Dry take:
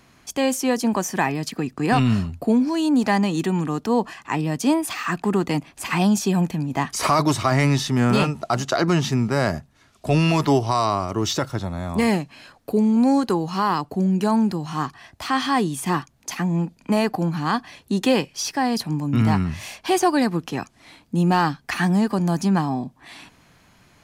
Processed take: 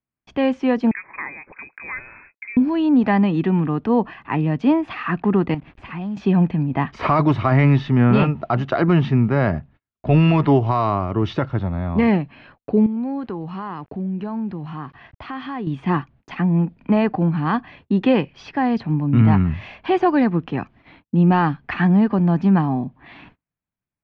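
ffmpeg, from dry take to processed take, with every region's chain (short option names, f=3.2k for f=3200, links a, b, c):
-filter_complex "[0:a]asettb=1/sr,asplit=3[a][b][c];[a]atrim=end=0.914[d];[b]atrim=start=0.91:end=2.57,asetpts=PTS-STARTPTS,afade=t=in:d=0.004:c=qsin,afade=t=out:st=1.656:d=0.004:c=qsin,acompressor=threshold=-26dB:ratio=3:attack=3.2:release=140:knee=1:detection=peak,highpass=f=390:w=0.5412,highpass=f=390:w=1.3066,lowpass=f=2.4k:t=q:w=0.5098,lowpass=f=2.4k:t=q:w=0.6013,lowpass=f=2.4k:t=q:w=0.9,lowpass=f=2.4k:t=q:w=2.563,afreqshift=-2800[e];[c]atrim=start=2.566[f];[d][e]acrossfade=d=0.004:c1=hsin:c2=qsin[g];[g][f]acrossfade=d=0.004:c1=qsin:c2=hsin,asettb=1/sr,asplit=3[h][i][j];[h]atrim=end=5.544[k];[i]atrim=start=5.54:end=6.17,asetpts=PTS-STARTPTS,afade=t=in:d=0.004:c=qsin,afade=t=out:st=0.626:d=0.004:c=qsin,acompressor=threshold=-37dB:ratio=2.5:attack=3.2:release=140:knee=1:detection=peak,lowshelf=f=96:g=10,acrusher=bits=7:mix=0:aa=0.5[l];[j]atrim=start=6.166[m];[k][l]acrossfade=d=0.004:c1=hsin:c2=qsin[n];[n][m]acrossfade=d=0.004:c1=qsin:c2=hsin,asettb=1/sr,asplit=3[o][p][q];[o]atrim=end=12.864[r];[p]atrim=start=12.86:end=15.67,asetpts=PTS-STARTPTS,afade=t=in:d=0.004:c=qsin,afade=t=out:st=2.806:d=0.004:c=qsin,acompressor=threshold=-35dB:ratio=2:attack=3.2:release=140:knee=1:detection=peak,aeval=exprs='val(0)*gte(abs(val(0)),0.00282)':c=same[s];[q]atrim=start=15.666[t];[r][s]acrossfade=d=0.004:c1=hsin:c2=qsin[u];[u][t]acrossfade=d=0.004:c1=qsin:c2=hsin,agate=range=-39dB:threshold=-48dB:ratio=16:detection=peak,lowpass=f=2.9k:w=0.5412,lowpass=f=2.9k:w=1.3066,lowshelf=f=270:g=6.5"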